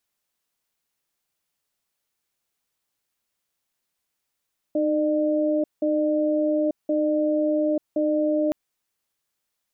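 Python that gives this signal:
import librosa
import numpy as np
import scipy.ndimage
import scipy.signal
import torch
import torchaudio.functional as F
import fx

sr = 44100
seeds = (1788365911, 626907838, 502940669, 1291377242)

y = fx.cadence(sr, length_s=3.77, low_hz=307.0, high_hz=603.0, on_s=0.89, off_s=0.18, level_db=-22.0)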